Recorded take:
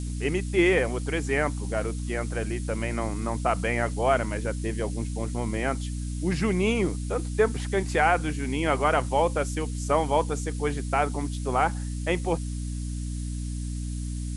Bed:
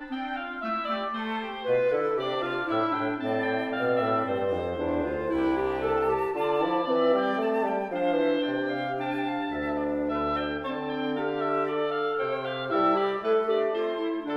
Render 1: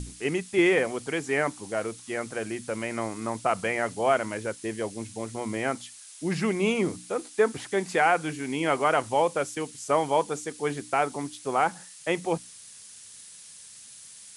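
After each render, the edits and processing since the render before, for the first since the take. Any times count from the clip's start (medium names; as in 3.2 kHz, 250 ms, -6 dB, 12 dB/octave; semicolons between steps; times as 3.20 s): hum notches 60/120/180/240/300 Hz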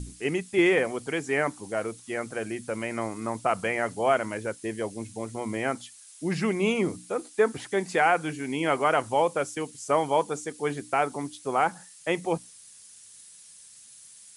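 noise reduction 6 dB, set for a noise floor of -48 dBFS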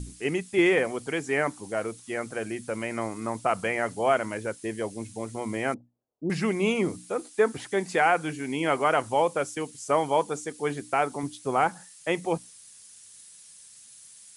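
5.74–6.30 s: inverse Chebyshev low-pass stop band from 3.4 kHz, stop band 80 dB; 11.23–11.67 s: bass shelf 180 Hz +8 dB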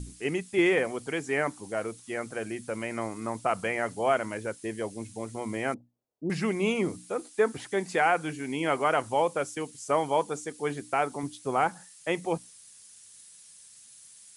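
trim -2 dB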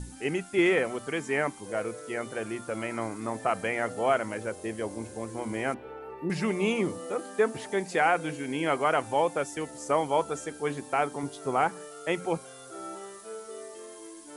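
add bed -17 dB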